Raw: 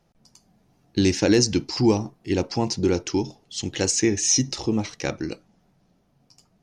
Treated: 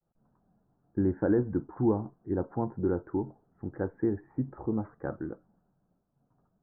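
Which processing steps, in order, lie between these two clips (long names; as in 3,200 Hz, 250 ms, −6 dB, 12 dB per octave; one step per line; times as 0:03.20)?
downward expander −59 dBFS
Butterworth low-pass 1,600 Hz 72 dB per octave
level −7 dB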